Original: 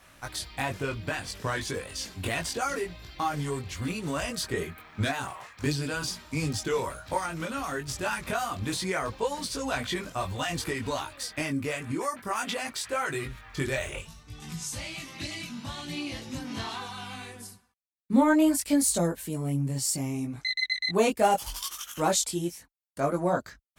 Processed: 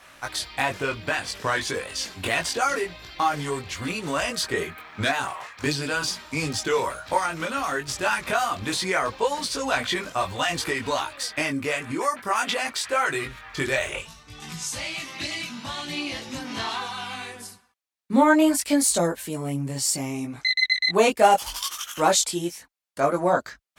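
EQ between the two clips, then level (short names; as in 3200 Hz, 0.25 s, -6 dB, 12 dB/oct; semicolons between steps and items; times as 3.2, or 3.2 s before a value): low shelf 280 Hz -12 dB; high shelf 7900 Hz -7.5 dB; +8.0 dB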